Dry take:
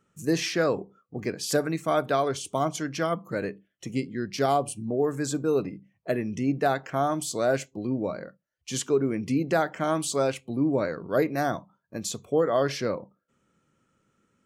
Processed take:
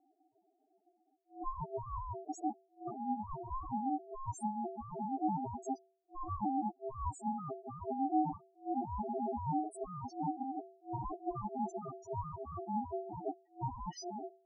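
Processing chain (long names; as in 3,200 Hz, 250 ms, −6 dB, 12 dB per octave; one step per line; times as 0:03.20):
played backwards from end to start
dynamic equaliser 1,200 Hz, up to −7 dB, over −46 dBFS, Q 4.1
transient designer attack +8 dB, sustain −4 dB
hum removal 74.62 Hz, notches 2
compressor whose output falls as the input rises −30 dBFS, ratio −1
drawn EQ curve 410 Hz 0 dB, 1,100 Hz −10 dB, 6,200 Hz −7 dB
spectral peaks only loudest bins 1
ring modulation 530 Hz
level +4 dB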